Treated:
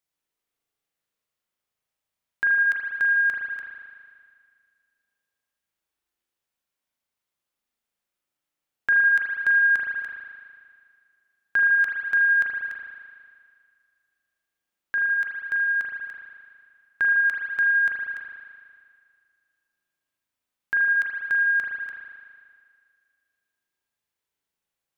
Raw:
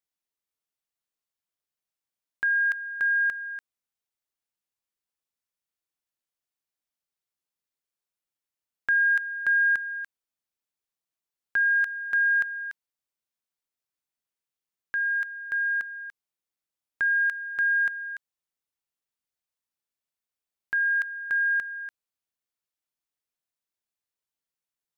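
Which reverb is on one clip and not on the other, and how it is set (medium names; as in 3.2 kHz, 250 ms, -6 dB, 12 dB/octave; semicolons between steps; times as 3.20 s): spring tank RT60 2 s, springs 37 ms, chirp 50 ms, DRR -2 dB; trim +3 dB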